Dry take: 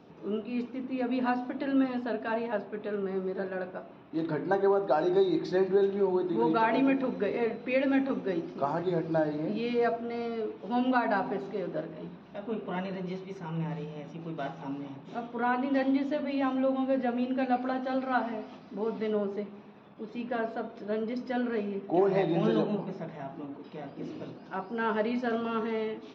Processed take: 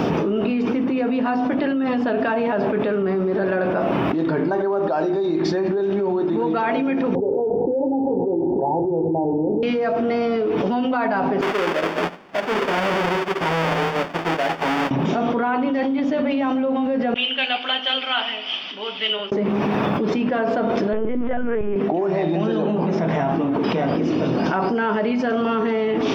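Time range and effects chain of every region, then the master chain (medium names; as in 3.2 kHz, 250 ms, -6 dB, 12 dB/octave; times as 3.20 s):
7.15–9.63 s: Chebyshev low-pass 930 Hz, order 8 + comb 2.4 ms, depth 61%
11.41–14.91 s: square wave that keeps the level + three-band isolator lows -15 dB, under 360 Hz, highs -22 dB, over 4.1 kHz + upward expansion 2.5:1, over -51 dBFS
17.14–19.32 s: upward compressor, threshold -33 dBFS + band-pass filter 3.1 kHz, Q 8.9 + flange 1.6 Hz, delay 0.3 ms, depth 4.1 ms, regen -83%
20.93–21.76 s: low-pass 2.3 kHz + LPC vocoder at 8 kHz pitch kept + doubling 17 ms -13 dB
whole clip: band-stop 4 kHz, Q 6.8; level flattener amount 100%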